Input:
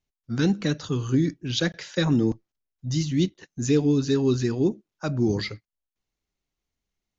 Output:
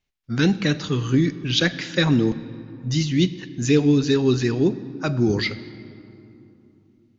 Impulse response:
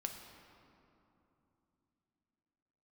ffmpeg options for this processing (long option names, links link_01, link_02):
-filter_complex "[0:a]equalizer=frequency=2300:width_type=o:width=1.4:gain=5.5,asplit=2[link_01][link_02];[1:a]atrim=start_sample=2205,lowpass=5400,highshelf=frequency=3600:gain=9[link_03];[link_02][link_03]afir=irnorm=-1:irlink=0,volume=-5.5dB[link_04];[link_01][link_04]amix=inputs=2:normalize=0"